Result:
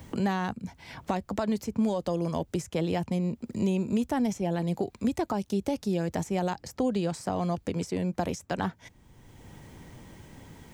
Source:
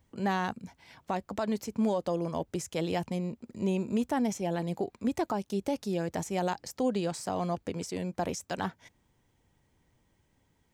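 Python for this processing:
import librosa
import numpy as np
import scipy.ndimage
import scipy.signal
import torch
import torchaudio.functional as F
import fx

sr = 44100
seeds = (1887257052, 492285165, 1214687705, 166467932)

y = fx.low_shelf(x, sr, hz=170.0, db=8.5)
y = fx.band_squash(y, sr, depth_pct=70)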